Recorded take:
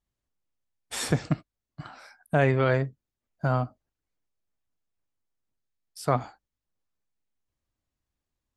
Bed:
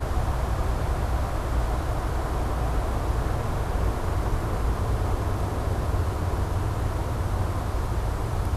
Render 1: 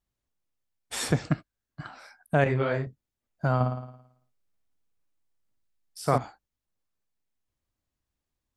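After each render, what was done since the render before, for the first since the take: 1.29–1.87 s: peaking EQ 1.6 kHz +10.5 dB 0.23 oct; 2.44–2.87 s: detune thickener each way 49 cents; 3.55–6.18 s: flutter echo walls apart 9.5 m, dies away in 0.72 s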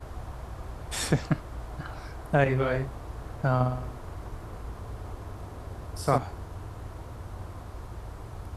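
add bed -13.5 dB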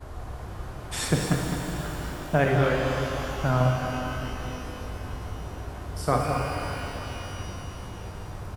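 delay 210 ms -9 dB; pitch-shifted reverb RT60 3.4 s, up +12 st, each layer -8 dB, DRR 1 dB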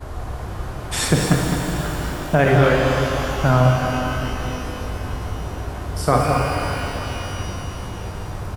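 trim +8 dB; peak limiter -3 dBFS, peak gain reduction 3 dB

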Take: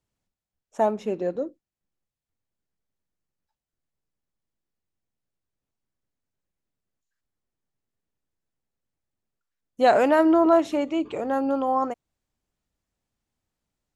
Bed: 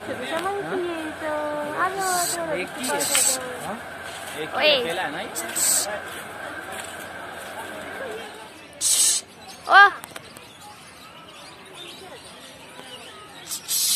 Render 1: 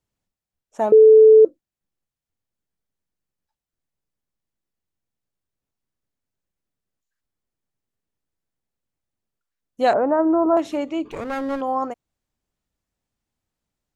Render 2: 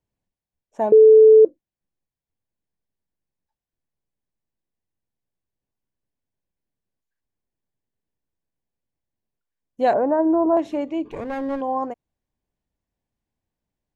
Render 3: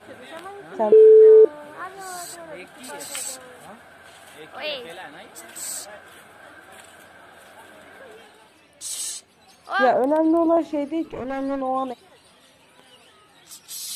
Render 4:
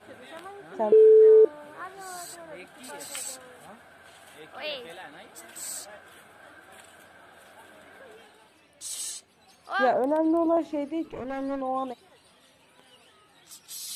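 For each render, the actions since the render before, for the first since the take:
0.92–1.45 s: bleep 437 Hz -6 dBFS; 9.93–10.57 s: low-pass 1.3 kHz 24 dB/octave; 11.11–11.61 s: comb filter that takes the minimum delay 0.45 ms
treble shelf 2.7 kHz -10.5 dB; band-stop 1.3 kHz, Q 5.2
add bed -11.5 dB
trim -5 dB

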